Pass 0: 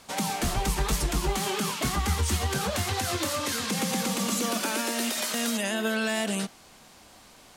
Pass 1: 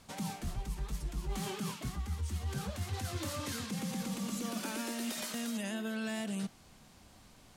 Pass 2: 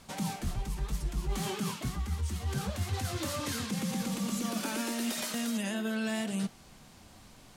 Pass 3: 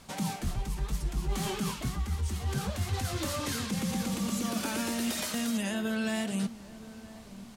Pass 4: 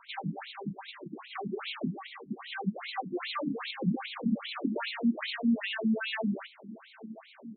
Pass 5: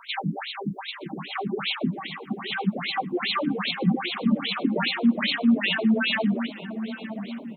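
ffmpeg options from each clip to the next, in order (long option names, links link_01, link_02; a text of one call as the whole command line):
ffmpeg -i in.wav -af "bass=frequency=250:gain=11,treble=frequency=4000:gain=0,areverse,acompressor=threshold=-25dB:ratio=6,areverse,volume=-9dB" out.wav
ffmpeg -i in.wav -af "flanger=delay=5.1:depth=4.4:regen=-75:speed=0.91:shape=sinusoidal,volume=8.5dB" out.wav
ffmpeg -i in.wav -filter_complex "[0:a]asplit=2[link_01][link_02];[link_02]adelay=974,lowpass=frequency=930:poles=1,volume=-16dB,asplit=2[link_03][link_04];[link_04]adelay=974,lowpass=frequency=930:poles=1,volume=0.52,asplit=2[link_05][link_06];[link_06]adelay=974,lowpass=frequency=930:poles=1,volume=0.52,asplit=2[link_07][link_08];[link_08]adelay=974,lowpass=frequency=930:poles=1,volume=0.52,asplit=2[link_09][link_10];[link_10]adelay=974,lowpass=frequency=930:poles=1,volume=0.52[link_11];[link_01][link_03][link_05][link_07][link_09][link_11]amix=inputs=6:normalize=0,volume=1.5dB" out.wav
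ffmpeg -i in.wav -af "afftfilt=real='re*between(b*sr/1024,210*pow(3100/210,0.5+0.5*sin(2*PI*2.5*pts/sr))/1.41,210*pow(3100/210,0.5+0.5*sin(2*PI*2.5*pts/sr))*1.41)':imag='im*between(b*sr/1024,210*pow(3100/210,0.5+0.5*sin(2*PI*2.5*pts/sr))/1.41,210*pow(3100/210,0.5+0.5*sin(2*PI*2.5*pts/sr))*1.41)':win_size=1024:overlap=0.75,volume=7.5dB" out.wav
ffmpeg -i in.wav -filter_complex "[0:a]highshelf=frequency=2700:gain=7,asplit=2[link_01][link_02];[link_02]adelay=919,lowpass=frequency=1000:poles=1,volume=-11dB,asplit=2[link_03][link_04];[link_04]adelay=919,lowpass=frequency=1000:poles=1,volume=0.54,asplit=2[link_05][link_06];[link_06]adelay=919,lowpass=frequency=1000:poles=1,volume=0.54,asplit=2[link_07][link_08];[link_08]adelay=919,lowpass=frequency=1000:poles=1,volume=0.54,asplit=2[link_09][link_10];[link_10]adelay=919,lowpass=frequency=1000:poles=1,volume=0.54,asplit=2[link_11][link_12];[link_12]adelay=919,lowpass=frequency=1000:poles=1,volume=0.54[link_13];[link_01][link_03][link_05][link_07][link_09][link_11][link_13]amix=inputs=7:normalize=0,volume=7dB" out.wav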